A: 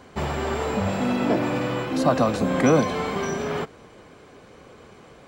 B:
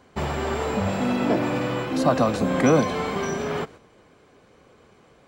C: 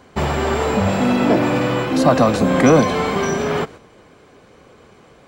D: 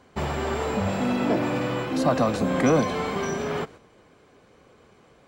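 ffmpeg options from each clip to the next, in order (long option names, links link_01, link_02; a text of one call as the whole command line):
ffmpeg -i in.wav -af "agate=range=-7dB:threshold=-42dB:ratio=16:detection=peak" out.wav
ffmpeg -i in.wav -af "acontrast=87" out.wav
ffmpeg -i in.wav -af "volume=-8dB" -ar 44100 -c:a libvorbis -b:a 192k out.ogg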